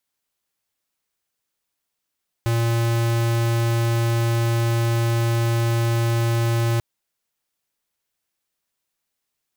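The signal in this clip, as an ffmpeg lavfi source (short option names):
-f lavfi -i "aevalsrc='0.1*(2*lt(mod(116*t,1),0.5)-1)':d=4.34:s=44100"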